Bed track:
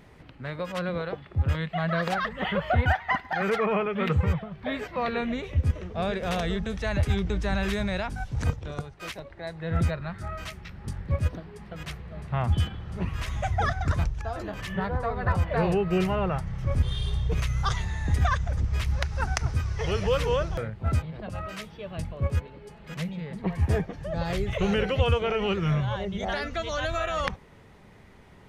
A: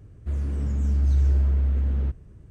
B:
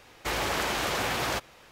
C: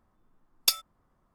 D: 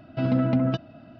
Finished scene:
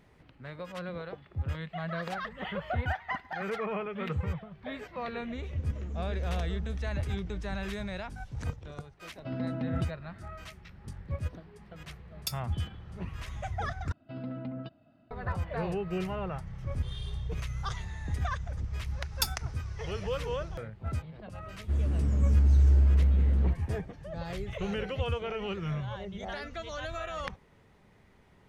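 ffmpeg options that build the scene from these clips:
-filter_complex "[1:a]asplit=2[a][b];[4:a]asplit=2[c][d];[3:a]asplit=2[e][f];[0:a]volume=-8.5dB[g];[a]aresample=16000,aresample=44100[h];[d]aresample=11025,aresample=44100[i];[g]asplit=2[j][k];[j]atrim=end=13.924[l];[i]atrim=end=1.19,asetpts=PTS-STARTPTS,volume=-16dB[m];[k]atrim=start=15.106[n];[h]atrim=end=2.5,asetpts=PTS-STARTPTS,volume=-13.5dB,afade=t=in:d=0.004:c=hsin,afade=t=out:st=2.496:d=0.004:c=hsin,adelay=224469S[o];[c]atrim=end=1.19,asetpts=PTS-STARTPTS,volume=-11.5dB,afade=t=in:d=0.004:c=hsin,afade=t=out:st=1.186:d=0.004:c=hsin,adelay=9080[p];[e]atrim=end=1.34,asetpts=PTS-STARTPTS,volume=-12dB,afade=t=in:d=0.004:c=hsin,afade=t=out:st=1.336:d=0.004:c=hsin,adelay=11590[q];[f]atrim=end=1.34,asetpts=PTS-STARTPTS,volume=-6.5dB,afade=t=in:d=0.004:c=hsin,afade=t=out:st=1.336:d=0.004:c=hsin,adelay=18540[r];[b]atrim=end=2.5,asetpts=PTS-STARTPTS,volume=-1dB,afade=t=in:d=0.004:c=hsin,afade=t=out:st=2.496:d=0.004:c=hsin,adelay=21420[s];[l][m]acrossfade=d=0.004:c1=hsin:c2=hsin[t];[t][n]acrossfade=d=0.004:c1=hsin:c2=hsin[u];[u][o][p][q][r][s]amix=inputs=6:normalize=0"

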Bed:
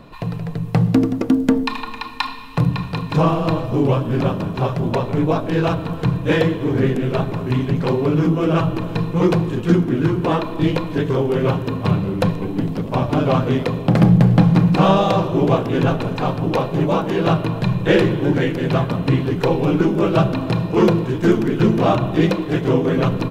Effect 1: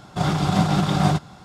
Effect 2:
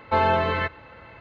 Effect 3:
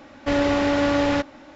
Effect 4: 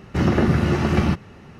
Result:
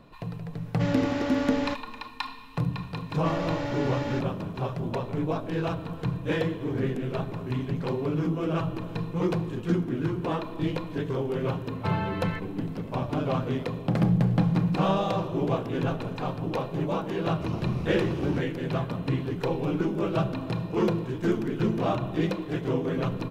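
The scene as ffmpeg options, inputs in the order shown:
-filter_complex "[3:a]asplit=2[a][b];[0:a]volume=-10.5dB[c];[b]aecho=1:1:2.2:0.34[d];[2:a]equalizer=f=580:t=o:w=0.69:g=-6.5[e];[4:a]asuperstop=centerf=1700:order=4:qfactor=1.8[f];[a]atrim=end=1.55,asetpts=PTS-STARTPTS,volume=-9dB,afade=t=in:d=0.004:c=hsin,afade=t=out:st=1.546:d=0.004:c=hsin,adelay=530[g];[d]atrim=end=1.55,asetpts=PTS-STARTPTS,volume=-12dB,afade=t=in:d=0.004:c=hsin,afade=t=out:st=1.546:d=0.004:c=hsin,adelay=2980[h];[e]atrim=end=1.2,asetpts=PTS-STARTPTS,volume=-10.5dB,afade=t=in:d=0.004:c=hsin,afade=t=out:st=1.196:d=0.004:c=hsin,adelay=11720[i];[f]atrim=end=1.59,asetpts=PTS-STARTPTS,volume=-15.5dB,afade=t=in:d=0.004:c=hsin,afade=t=out:st=1.586:d=0.004:c=hsin,adelay=17260[j];[c][g][h][i][j]amix=inputs=5:normalize=0"

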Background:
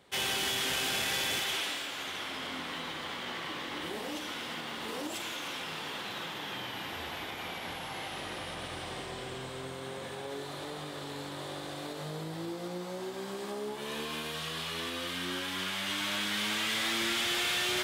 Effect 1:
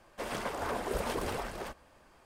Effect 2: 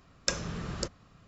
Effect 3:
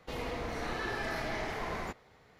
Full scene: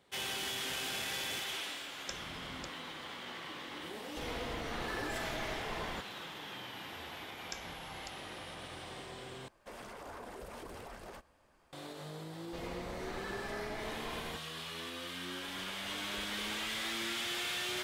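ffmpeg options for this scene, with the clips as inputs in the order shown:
-filter_complex "[2:a]asplit=2[a][b];[3:a]asplit=2[c][d];[1:a]asplit=2[e][f];[0:a]volume=-6.5dB[g];[b]equalizer=f=310:t=o:w=1.9:g=-12[h];[e]alimiter=level_in=7dB:limit=-24dB:level=0:latency=1:release=54,volume=-7dB[i];[g]asplit=2[j][k];[j]atrim=end=9.484[l];[i]atrim=end=2.25,asetpts=PTS-STARTPTS,volume=-7.5dB[m];[k]atrim=start=11.726[n];[a]atrim=end=1.27,asetpts=PTS-STARTPTS,volume=-14.5dB,afade=t=in:d=0.004:c=hsin,afade=t=out:st=1.266:d=0.004:c=hsin,adelay=1810[o];[c]atrim=end=2.39,asetpts=PTS-STARTPTS,volume=-3.5dB,afade=t=in:d=0.004:c=hsin,afade=t=out:st=2.386:d=0.004:c=hsin,adelay=180369S[p];[h]atrim=end=1.27,asetpts=PTS-STARTPTS,volume=-15dB,afade=t=in:d=0.004:c=hsin,afade=t=out:st=1.266:d=0.004:c=hsin,adelay=7240[q];[d]atrim=end=2.39,asetpts=PTS-STARTPTS,volume=-6.5dB,afade=t=in:d=0.004:c=hsin,afade=t=out:st=2.386:d=0.004:c=hsin,adelay=12450[r];[f]atrim=end=2.25,asetpts=PTS-STARTPTS,volume=-16dB,afade=t=in:d=0.004:c=hsin,afade=t=out:st=2.246:d=0.004:c=hsin,adelay=15230[s];[l][m]acrossfade=d=0.004:c1=hsin:c2=hsin[t];[t][n]acrossfade=d=0.004:c1=hsin:c2=hsin[u];[u][o][p][q][r][s]amix=inputs=6:normalize=0"

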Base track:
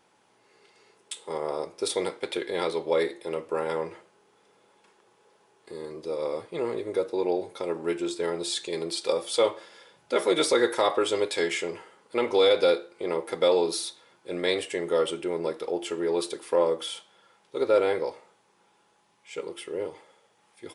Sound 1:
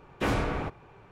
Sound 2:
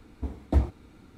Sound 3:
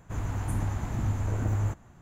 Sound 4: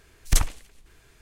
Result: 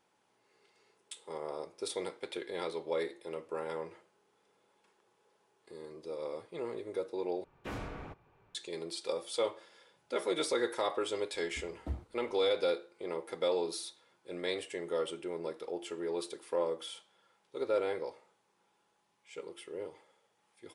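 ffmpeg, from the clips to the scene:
-filter_complex "[0:a]volume=-9.5dB,asplit=2[a][b];[a]atrim=end=7.444[c];[1:a]atrim=end=1.11,asetpts=PTS-STARTPTS,volume=-13.5dB[d];[b]atrim=start=8.546[e];[2:a]atrim=end=1.17,asetpts=PTS-STARTPTS,volume=-15.5dB,afade=t=in:d=0.004:c=hsin,afade=t=out:st=1.166:d=0.004:c=hsin,adelay=11340[f];[c][d]acrossfade=d=0.004:c1=hsin:c2=hsin[g];[g][e]acrossfade=d=0.004:c1=hsin:c2=hsin[h];[h][f]amix=inputs=2:normalize=0"

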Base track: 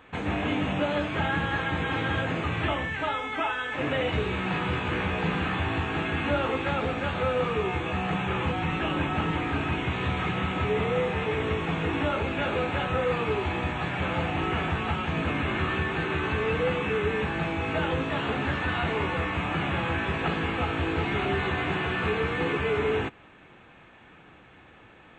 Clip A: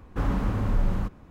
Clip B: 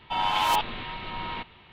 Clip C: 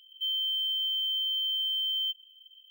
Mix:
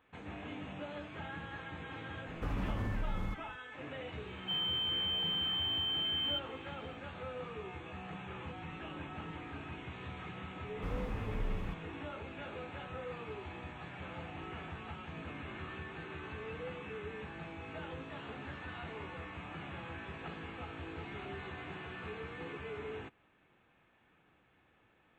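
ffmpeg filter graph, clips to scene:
-filter_complex "[1:a]asplit=2[a][b];[0:a]volume=-17dB[c];[a]acompressor=threshold=-26dB:ratio=6:attack=3.2:release=140:knee=1:detection=peak[d];[3:a]lowpass=9.7k[e];[d]atrim=end=1.3,asetpts=PTS-STARTPTS,volume=-5.5dB,afade=t=in:d=0.004:c=hsin,afade=t=out:st=1.296:d=0.004:c=hsin,adelay=2260[f];[e]atrim=end=2.7,asetpts=PTS-STARTPTS,volume=-5dB,afade=t=in:d=0.004:c=hsin,afade=t=out:st=2.696:d=0.004:c=hsin,adelay=4270[g];[b]atrim=end=1.3,asetpts=PTS-STARTPTS,volume=-13dB,afade=t=in:d=0.004:c=hsin,afade=t=out:st=1.296:d=0.004:c=hsin,adelay=470106S[h];[c][f][g][h]amix=inputs=4:normalize=0"

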